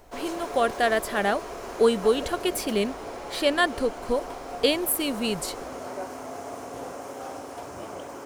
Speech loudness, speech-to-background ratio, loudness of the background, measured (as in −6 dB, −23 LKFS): −25.5 LKFS, 11.0 dB, −36.5 LKFS